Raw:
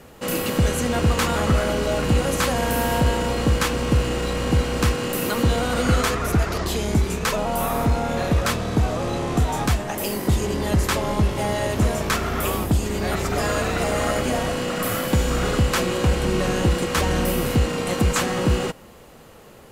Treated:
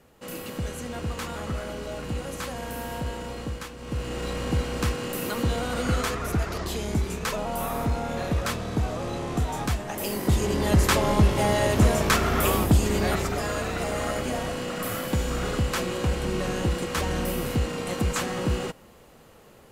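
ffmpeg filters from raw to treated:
-af "volume=2.37,afade=t=out:st=3.38:d=0.38:silence=0.473151,afade=t=in:st=3.76:d=0.51:silence=0.237137,afade=t=in:st=9.82:d=1.1:silence=0.446684,afade=t=out:st=12.96:d=0.44:silence=0.446684"

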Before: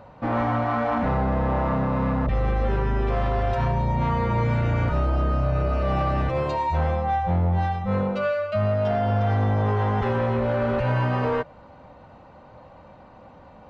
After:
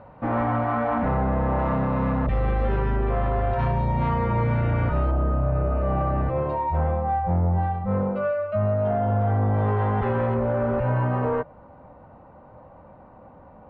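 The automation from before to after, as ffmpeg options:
-af "asetnsamples=n=441:p=0,asendcmd='1.59 lowpass f 3200;2.96 lowpass f 2000;3.59 lowpass f 3200;4.14 lowpass f 2400;5.11 lowpass f 1300;9.54 lowpass f 2100;10.34 lowpass f 1400',lowpass=2200"

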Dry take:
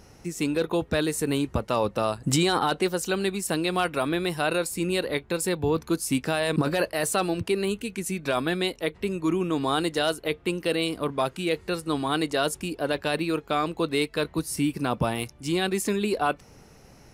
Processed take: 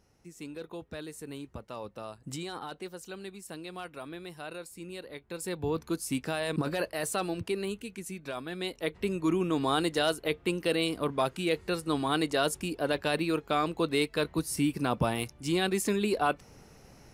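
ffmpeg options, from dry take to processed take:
-af "volume=1.58,afade=t=in:st=5.19:d=0.47:silence=0.334965,afade=t=out:st=7.5:d=0.98:silence=0.473151,afade=t=in:st=8.48:d=0.51:silence=0.298538"

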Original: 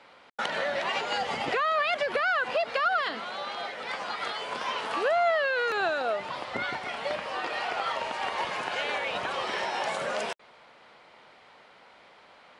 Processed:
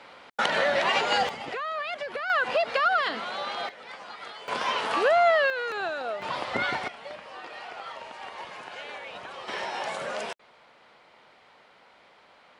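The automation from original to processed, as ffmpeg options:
-af "asetnsamples=n=441:p=0,asendcmd='1.29 volume volume -6dB;2.3 volume volume 2.5dB;3.69 volume volume -8dB;4.48 volume volume 4dB;5.5 volume volume -3.5dB;6.22 volume volume 4dB;6.88 volume volume -9dB;9.48 volume volume -2dB',volume=1.88"

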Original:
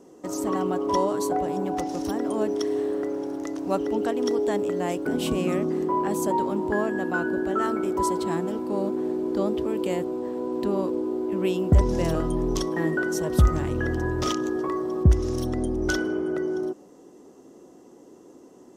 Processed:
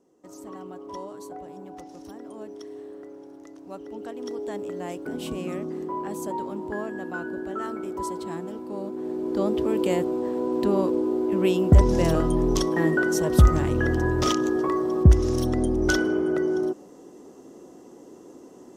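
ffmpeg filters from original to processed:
-af "volume=1.41,afade=t=in:st=3.77:d=0.98:silence=0.421697,afade=t=in:st=8.92:d=0.81:silence=0.334965"

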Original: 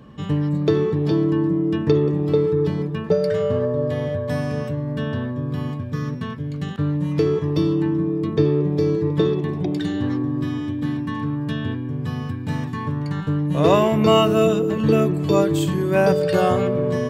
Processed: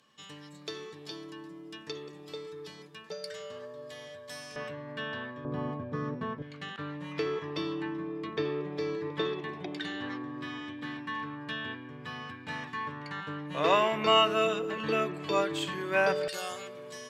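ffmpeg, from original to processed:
-af "asetnsamples=n=441:p=0,asendcmd='4.56 bandpass f 2200;5.45 bandpass f 720;6.42 bandpass f 2100;16.28 bandpass f 7300',bandpass=f=6900:t=q:w=0.84:csg=0"

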